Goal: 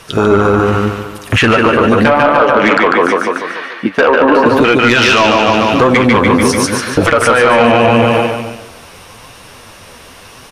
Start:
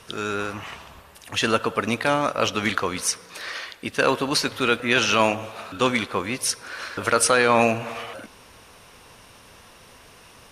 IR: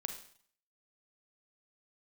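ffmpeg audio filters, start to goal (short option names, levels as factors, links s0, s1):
-filter_complex "[0:a]asettb=1/sr,asplit=3[s0][s1][s2];[s0]atrim=end=2.084[s3];[s1]atrim=start=2.08:end=4.46,asetpts=PTS-STARTPTS,afade=t=in:d=0.004:c=qsin,afade=t=out:st=2.376:d=0.004:c=qsin,acrossover=split=230 2700:gain=0.0794 1 0.1[s4][s5][s6];[s4][s5][s6]amix=inputs=3:normalize=0[s7];[s2]atrim=start=4.456[s8];[s3][s7]acrossfade=d=0.004:c1=hsin:c2=qsin[s9];[s9][s8]acrossfade=d=0.004:c1=qsin:c2=hsin,afwtdn=0.0562,aecho=1:1:146|292|438|584|730|876:0.708|0.326|0.15|0.0689|0.0317|0.0146,acompressor=threshold=0.0794:ratio=12,flanger=delay=5.7:depth=7.3:regen=50:speed=0.85:shape=triangular,asoftclip=type=tanh:threshold=0.0631,alimiter=level_in=39.8:limit=0.891:release=50:level=0:latency=1,volume=0.891"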